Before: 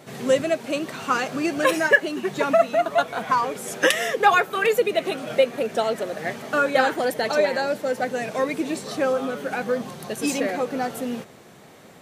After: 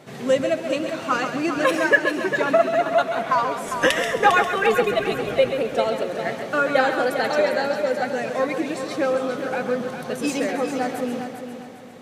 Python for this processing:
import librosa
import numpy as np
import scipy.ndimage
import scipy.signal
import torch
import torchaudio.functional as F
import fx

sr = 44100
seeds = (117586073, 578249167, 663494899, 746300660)

y = fx.octave_divider(x, sr, octaves=1, level_db=-5.0, at=(3.63, 5.5))
y = fx.high_shelf(y, sr, hz=7900.0, db=-8.5)
y = fx.echo_heads(y, sr, ms=134, heads='first and third', feedback_pct=49, wet_db=-9)